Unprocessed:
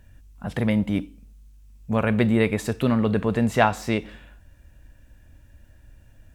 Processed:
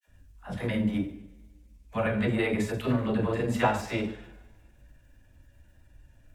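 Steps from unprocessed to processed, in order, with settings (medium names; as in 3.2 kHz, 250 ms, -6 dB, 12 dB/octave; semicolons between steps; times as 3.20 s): two-slope reverb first 0.5 s, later 1.6 s, from -18 dB, DRR 2.5 dB; granulator, spray 21 ms, pitch spread up and down by 0 st; phase dispersion lows, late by 66 ms, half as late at 520 Hz; trim -5 dB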